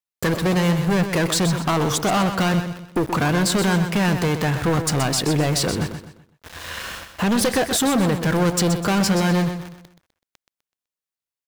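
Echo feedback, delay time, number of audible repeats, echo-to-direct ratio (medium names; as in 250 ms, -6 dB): 36%, 126 ms, 3, -8.5 dB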